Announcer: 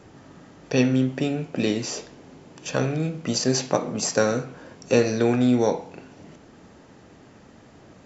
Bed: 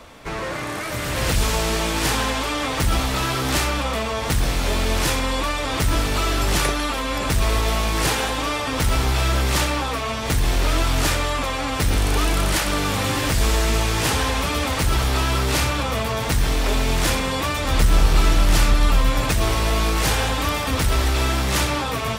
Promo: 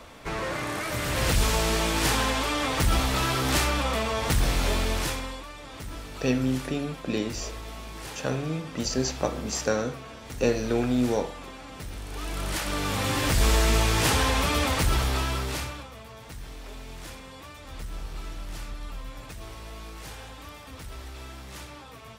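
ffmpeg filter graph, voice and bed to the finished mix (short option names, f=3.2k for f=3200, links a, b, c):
-filter_complex "[0:a]adelay=5500,volume=-5dB[a];[1:a]volume=13.5dB,afade=t=out:st=4.63:d=0.81:silence=0.16788,afade=t=in:st=12.08:d=1.43:silence=0.149624,afade=t=out:st=14.63:d=1.27:silence=0.112202[b];[a][b]amix=inputs=2:normalize=0"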